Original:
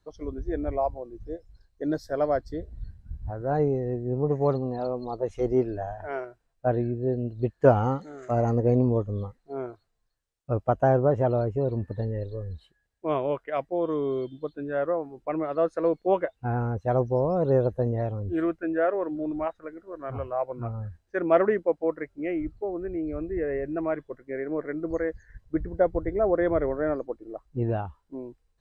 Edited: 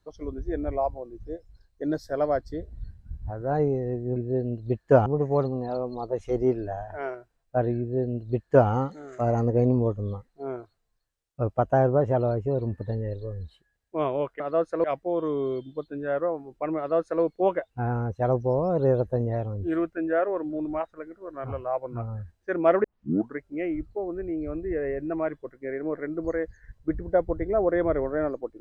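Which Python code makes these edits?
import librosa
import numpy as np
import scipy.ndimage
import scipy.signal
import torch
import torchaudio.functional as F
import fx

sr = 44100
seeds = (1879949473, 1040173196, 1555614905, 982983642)

y = fx.edit(x, sr, fx.duplicate(start_s=6.89, length_s=0.9, to_s=4.16),
    fx.duplicate(start_s=15.44, length_s=0.44, to_s=13.5),
    fx.tape_start(start_s=21.5, length_s=0.55), tone=tone)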